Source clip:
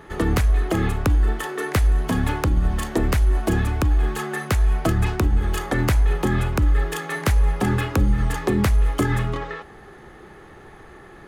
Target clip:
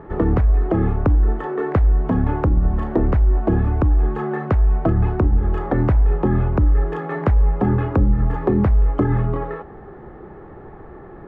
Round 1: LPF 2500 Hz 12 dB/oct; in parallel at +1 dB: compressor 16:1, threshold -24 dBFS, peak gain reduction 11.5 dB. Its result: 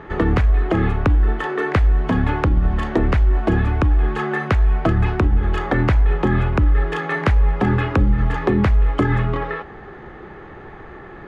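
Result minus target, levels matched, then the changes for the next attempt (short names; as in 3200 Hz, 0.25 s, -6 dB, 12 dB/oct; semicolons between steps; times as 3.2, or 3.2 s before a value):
2000 Hz band +9.5 dB
change: LPF 950 Hz 12 dB/oct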